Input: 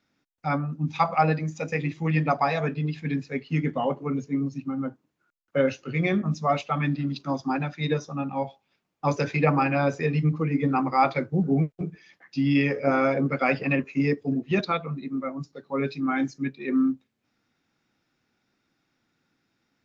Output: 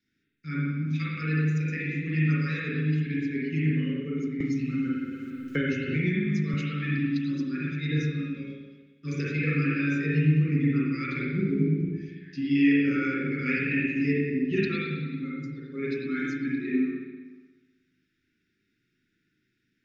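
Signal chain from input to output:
elliptic band-stop filter 390–1,600 Hz, stop band 80 dB
convolution reverb RT60 1.3 s, pre-delay 39 ms, DRR −6 dB
0:04.40–0:06.54: multiband upward and downward compressor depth 100%
level −6 dB

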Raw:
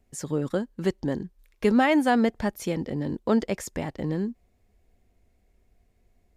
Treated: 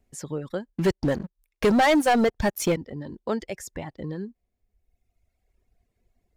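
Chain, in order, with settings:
reverb reduction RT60 1.5 s
dynamic equaliser 250 Hz, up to −7 dB, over −37 dBFS, Q 2.3
0:00.70–0:02.76: leveller curve on the samples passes 3
level −2 dB

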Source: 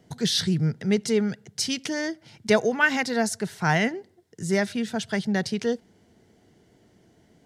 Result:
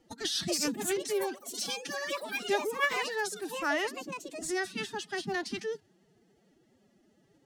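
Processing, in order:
dynamic equaliser 410 Hz, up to −4 dB, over −36 dBFS, Q 1.1
delay with pitch and tempo change per echo 345 ms, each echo +6 semitones, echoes 3, each echo −6 dB
phase-vocoder pitch shift with formants kept +11 semitones
level −7 dB

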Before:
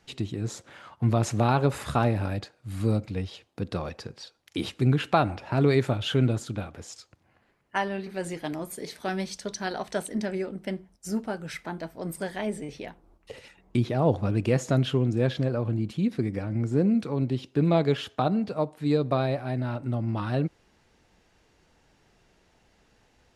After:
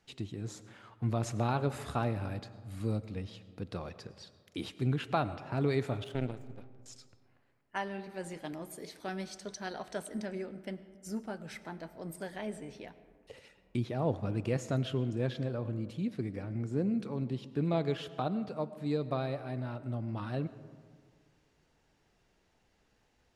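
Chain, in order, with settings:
0:06.04–0:06.86: power curve on the samples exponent 2
comb and all-pass reverb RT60 1.9 s, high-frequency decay 0.4×, pre-delay 65 ms, DRR 15 dB
level −8.5 dB

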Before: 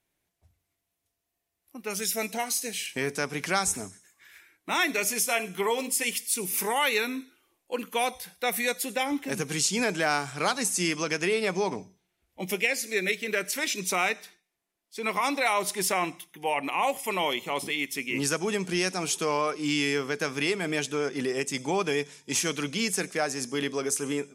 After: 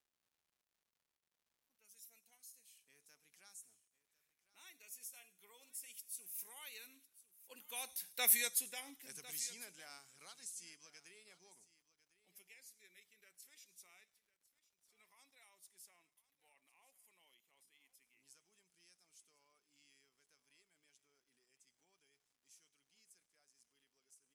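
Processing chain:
source passing by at 0:08.27, 10 m/s, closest 1.7 metres
first-order pre-emphasis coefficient 0.9
single-tap delay 1,052 ms −18 dB
surface crackle 240 per second −72 dBFS
level +1.5 dB

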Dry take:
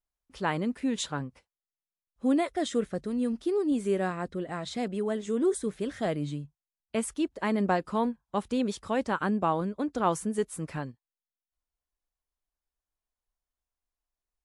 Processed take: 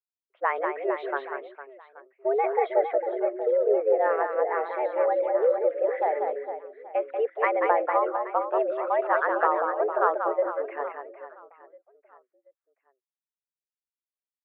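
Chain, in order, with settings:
spectral envelope exaggerated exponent 1.5
single-sideband voice off tune +130 Hz 320–2,200 Hz
downward compressor, threshold −28 dBFS, peak gain reduction 9 dB
reverse bouncing-ball delay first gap 190 ms, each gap 1.4×, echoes 5
multiband upward and downward expander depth 70%
level +7.5 dB

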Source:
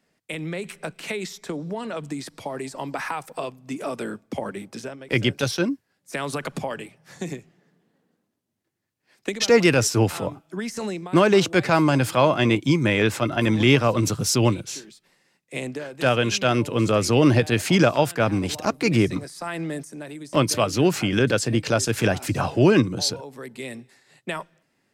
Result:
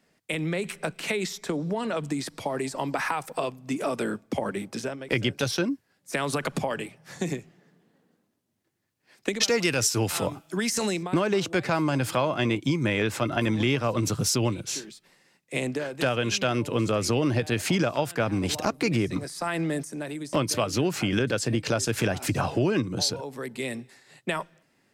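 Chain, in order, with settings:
0:09.43–0:11.03: high-shelf EQ 2,400 Hz +9 dB
downward compressor 4 to 1, threshold −25 dBFS, peak gain reduction 13 dB
level +2.5 dB

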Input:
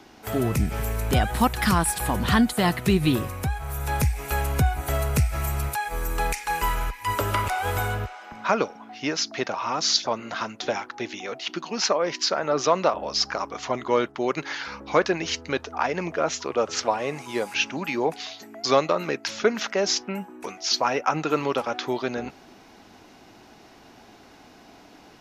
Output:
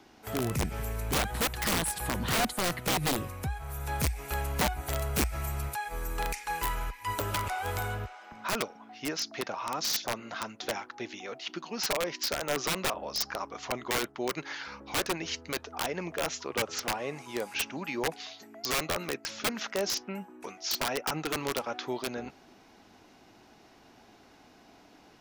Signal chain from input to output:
wrap-around overflow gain 15 dB
level −7 dB

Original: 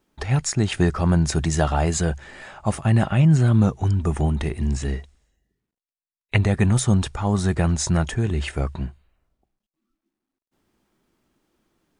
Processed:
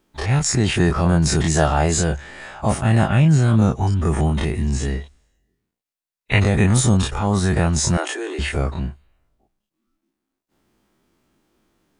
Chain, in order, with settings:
every bin's largest magnitude spread in time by 60 ms
0:07.97–0:08.39: Butterworth high-pass 290 Hz 96 dB per octave

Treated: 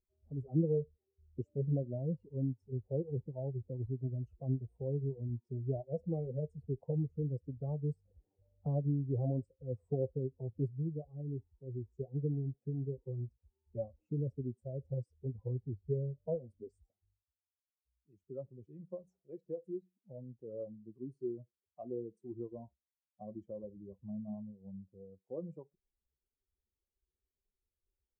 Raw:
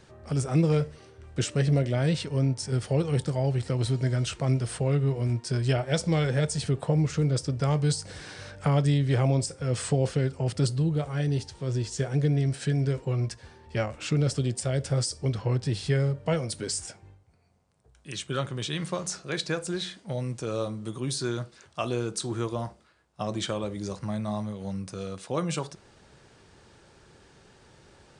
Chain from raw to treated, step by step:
spectral dynamics exaggerated over time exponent 2
inverse Chebyshev low-pass filter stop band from 1,400 Hz, stop band 50 dB
low-shelf EQ 340 Hz −10 dB
level +1.5 dB

